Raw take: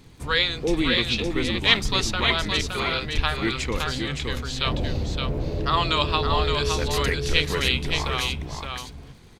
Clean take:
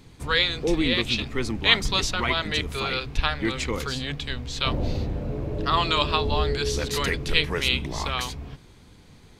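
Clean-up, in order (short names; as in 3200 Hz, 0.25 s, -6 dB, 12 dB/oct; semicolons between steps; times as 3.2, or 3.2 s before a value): de-click; inverse comb 0.567 s -5 dB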